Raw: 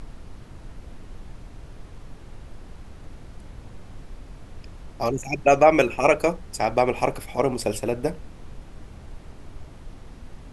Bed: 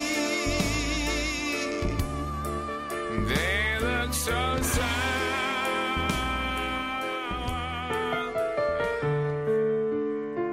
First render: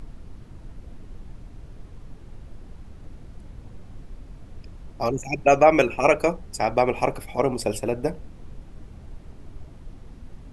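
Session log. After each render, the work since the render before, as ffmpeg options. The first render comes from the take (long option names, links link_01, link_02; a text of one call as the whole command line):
ffmpeg -i in.wav -af "afftdn=noise_reduction=6:noise_floor=-44" out.wav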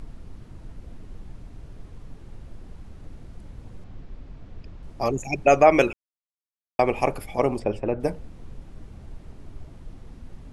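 ffmpeg -i in.wav -filter_complex "[0:a]asettb=1/sr,asplit=3[link_01][link_02][link_03];[link_01]atrim=end=3.844[link_04];[link_02]atrim=start=3.84:end=4.83,asetpts=PTS-STARTPTS,afade=type=in:duration=0.004:curve=qsin,afade=type=out:start_time=0.986:duration=0.004:curve=qsin,lowpass=4900[link_05];[link_03]atrim=start=4.826[link_06];[link_04][link_05]acrossfade=duration=0.004:curve1=hsin:curve2=qsin[link_07];[link_07][link_06]acrossfade=duration=0.004:curve1=qsin:curve2=hsin,asplit=3[link_08][link_09][link_10];[link_08]afade=type=out:start_time=7.58:duration=0.02[link_11];[link_09]lowpass=2100,afade=type=in:start_time=7.58:duration=0.02,afade=type=out:start_time=7.99:duration=0.02[link_12];[link_10]afade=type=in:start_time=7.99:duration=0.02[link_13];[link_11][link_12][link_13]amix=inputs=3:normalize=0,asplit=3[link_14][link_15][link_16];[link_14]atrim=end=5.93,asetpts=PTS-STARTPTS,afade=type=out:start_time=5.926:duration=0.004:curve=hsin[link_17];[link_15]atrim=start=5.93:end=6.79,asetpts=PTS-STARTPTS,volume=0[link_18];[link_16]atrim=start=6.79,asetpts=PTS-STARTPTS,afade=type=in:duration=0.004:curve=hsin[link_19];[link_17][link_18][link_19]concat=n=3:v=0:a=1" out.wav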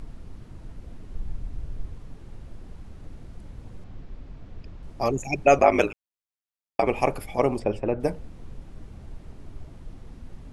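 ffmpeg -i in.wav -filter_complex "[0:a]asettb=1/sr,asplit=3[link_01][link_02][link_03];[link_01]atrim=end=1.154[link_04];[link_02]atrim=start=1.15:end=1.94,asetpts=PTS-STARTPTS,afade=type=in:duration=0.004:curve=qsin,afade=type=out:start_time=0.786:duration=0.004:curve=qsin,lowshelf=frequency=86:gain=10.5[link_05];[link_03]atrim=start=1.936[link_06];[link_04][link_05]acrossfade=duration=0.004:curve1=hsin:curve2=qsin[link_07];[link_07][link_06]acrossfade=duration=0.004:curve1=qsin:curve2=hsin,asettb=1/sr,asplit=3[link_08][link_09][link_10];[link_08]atrim=end=5.584[link_11];[link_09]atrim=start=5.58:end=6.87,asetpts=PTS-STARTPTS,afade=type=in:duration=0.004:curve=qsin,afade=type=out:start_time=1.286:duration=0.004:curve=qsin,aeval=exprs='val(0)*sin(2*PI*52*n/s)':channel_layout=same[link_12];[link_10]atrim=start=6.866[link_13];[link_11][link_12]acrossfade=duration=0.004:curve1=hsin:curve2=qsin[link_14];[link_14][link_13]acrossfade=duration=0.004:curve1=qsin:curve2=hsin" out.wav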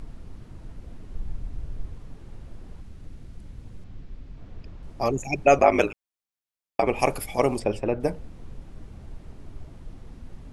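ffmpeg -i in.wav -filter_complex "[0:a]asettb=1/sr,asplit=3[link_01][link_02][link_03];[link_01]atrim=end=2.814[link_04];[link_02]atrim=start=2.81:end=4.38,asetpts=PTS-STARTPTS,afade=type=in:duration=0.004:curve=qsin,afade=type=out:start_time=1.566:duration=0.004:curve=qsin,equalizer=frequency=750:width=0.59:gain=-5.5[link_05];[link_03]atrim=start=4.376[link_06];[link_04][link_05]acrossfade=duration=0.004:curve1=hsin:curve2=qsin[link_07];[link_07][link_06]acrossfade=duration=0.004:curve1=qsin:curve2=hsin,asettb=1/sr,asplit=3[link_08][link_09][link_10];[link_08]atrim=end=6.994[link_11];[link_09]atrim=start=6.99:end=7.99,asetpts=PTS-STARTPTS,afade=type=in:duration=0.004:curve=qsin,afade=type=out:start_time=0.996:duration=0.004:curve=qsin,highshelf=frequency=3700:gain=10.5[link_12];[link_10]atrim=start=7.986[link_13];[link_11][link_12]acrossfade=duration=0.004:curve1=hsin:curve2=qsin[link_14];[link_14][link_13]acrossfade=duration=0.004:curve1=qsin:curve2=hsin" out.wav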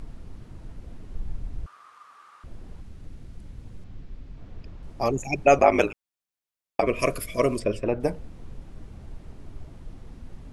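ffmpeg -i in.wav -filter_complex "[0:a]asettb=1/sr,asplit=3[link_01][link_02][link_03];[link_01]atrim=end=1.664[link_04];[link_02]atrim=start=1.66:end=2.44,asetpts=PTS-STARTPTS,afade=type=in:duration=0.004:curve=qsin,afade=type=out:start_time=0.776:duration=0.004:curve=qsin,highpass=frequency=1200:width_type=q:width=12[link_05];[link_03]atrim=start=2.436[link_06];[link_04][link_05]acrossfade=duration=0.004:curve1=hsin:curve2=qsin[link_07];[link_07][link_06]acrossfade=duration=0.004:curve1=qsin:curve2=hsin,asettb=1/sr,asplit=3[link_08][link_09][link_10];[link_08]atrim=end=6.814[link_11];[link_09]atrim=start=6.81:end=7.87,asetpts=PTS-STARTPTS,afade=type=in:duration=0.004:curve=qsin,afade=type=out:start_time=1.056:duration=0.004:curve=qsin,asuperstop=centerf=820:order=12:qfactor=3.2[link_12];[link_10]atrim=start=7.866[link_13];[link_11][link_12]acrossfade=duration=0.004:curve1=hsin:curve2=qsin[link_14];[link_14][link_13]acrossfade=duration=0.004:curve1=qsin:curve2=hsin" out.wav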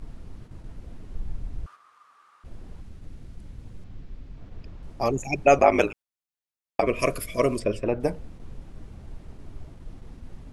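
ffmpeg -i in.wav -af "agate=range=-6dB:threshold=-42dB:ratio=16:detection=peak" out.wav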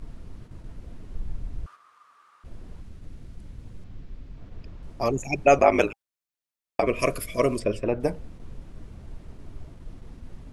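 ffmpeg -i in.wav -af "bandreject=frequency=800:width=22" out.wav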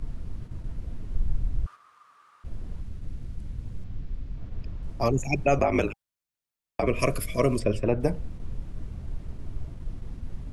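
ffmpeg -i in.wav -filter_complex "[0:a]acrossover=split=180[link_01][link_02];[link_01]acontrast=70[link_03];[link_02]alimiter=limit=-13dB:level=0:latency=1:release=85[link_04];[link_03][link_04]amix=inputs=2:normalize=0" out.wav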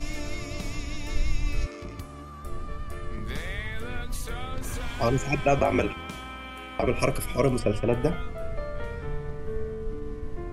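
ffmpeg -i in.wav -i bed.wav -filter_complex "[1:a]volume=-10.5dB[link_01];[0:a][link_01]amix=inputs=2:normalize=0" out.wav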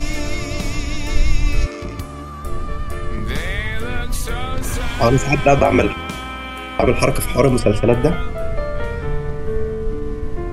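ffmpeg -i in.wav -af "volume=10.5dB,alimiter=limit=-2dB:level=0:latency=1" out.wav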